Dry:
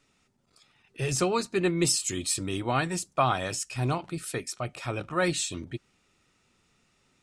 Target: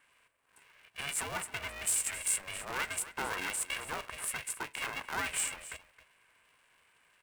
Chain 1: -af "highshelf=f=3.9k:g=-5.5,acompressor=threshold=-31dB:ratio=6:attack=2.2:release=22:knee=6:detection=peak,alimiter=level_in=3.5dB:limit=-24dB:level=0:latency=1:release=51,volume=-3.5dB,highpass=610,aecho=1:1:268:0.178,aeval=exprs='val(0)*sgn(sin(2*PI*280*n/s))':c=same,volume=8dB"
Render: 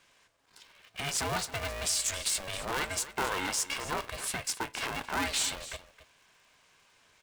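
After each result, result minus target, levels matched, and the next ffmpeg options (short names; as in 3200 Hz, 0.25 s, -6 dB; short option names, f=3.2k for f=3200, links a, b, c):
4000 Hz band +4.5 dB; 500 Hz band +4.5 dB
-af "asuperstop=centerf=4700:order=20:qfactor=0.93,highshelf=f=3.9k:g=-5.5,acompressor=threshold=-31dB:ratio=6:attack=2.2:release=22:knee=6:detection=peak,alimiter=level_in=3.5dB:limit=-24dB:level=0:latency=1:release=51,volume=-3.5dB,highpass=610,aecho=1:1:268:0.178,aeval=exprs='val(0)*sgn(sin(2*PI*280*n/s))':c=same,volume=8dB"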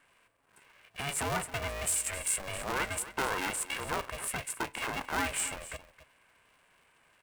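500 Hz band +6.0 dB
-af "asuperstop=centerf=4700:order=20:qfactor=0.93,highshelf=f=3.9k:g=-5.5,acompressor=threshold=-31dB:ratio=6:attack=2.2:release=22:knee=6:detection=peak,alimiter=level_in=3.5dB:limit=-24dB:level=0:latency=1:release=51,volume=-3.5dB,highpass=1.2k,aecho=1:1:268:0.178,aeval=exprs='val(0)*sgn(sin(2*PI*280*n/s))':c=same,volume=8dB"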